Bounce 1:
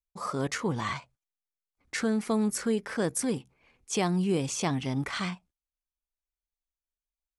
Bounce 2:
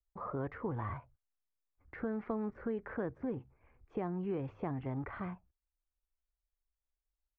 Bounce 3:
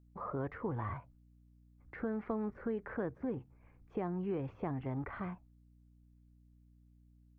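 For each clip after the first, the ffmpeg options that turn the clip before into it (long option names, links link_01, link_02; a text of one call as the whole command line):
ffmpeg -i in.wav -filter_complex "[0:a]firequalizer=gain_entry='entry(100,0);entry(160,-14);entry(320,-10)':delay=0.05:min_phase=1,acrossover=split=350|790[link_01][link_02][link_03];[link_01]acompressor=threshold=-46dB:ratio=4[link_04];[link_02]acompressor=threshold=-48dB:ratio=4[link_05];[link_03]acompressor=threshold=-52dB:ratio=4[link_06];[link_04][link_05][link_06]amix=inputs=3:normalize=0,lowpass=frequency=1800:width=0.5412,lowpass=frequency=1800:width=1.3066,volume=7.5dB" out.wav
ffmpeg -i in.wav -af "aeval=exprs='val(0)+0.000794*(sin(2*PI*60*n/s)+sin(2*PI*2*60*n/s)/2+sin(2*PI*3*60*n/s)/3+sin(2*PI*4*60*n/s)/4+sin(2*PI*5*60*n/s)/5)':channel_layout=same" out.wav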